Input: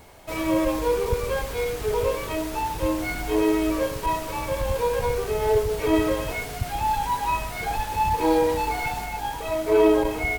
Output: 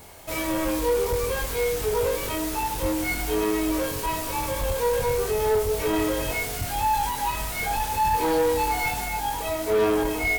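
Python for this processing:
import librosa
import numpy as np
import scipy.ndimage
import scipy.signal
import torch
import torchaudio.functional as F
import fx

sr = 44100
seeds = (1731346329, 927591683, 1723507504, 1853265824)

y = fx.high_shelf(x, sr, hz=5300.0, db=9.0)
y = 10.0 ** (-20.5 / 20.0) * np.tanh(y / 10.0 ** (-20.5 / 20.0))
y = fx.doubler(y, sr, ms=23.0, db=-4.5)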